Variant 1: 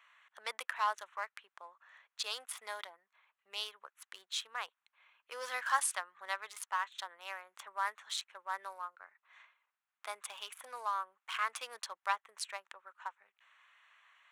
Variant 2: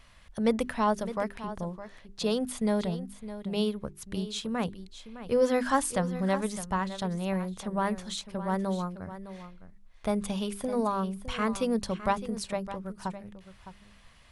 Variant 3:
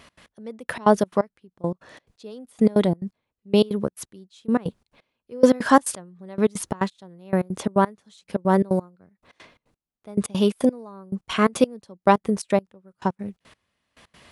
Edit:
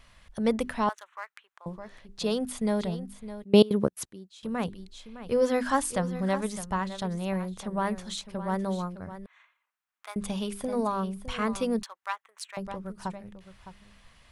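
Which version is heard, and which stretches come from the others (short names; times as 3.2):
2
0.89–1.66 from 1
3.44–4.43 from 3
9.26–10.16 from 1
11.83–12.57 from 1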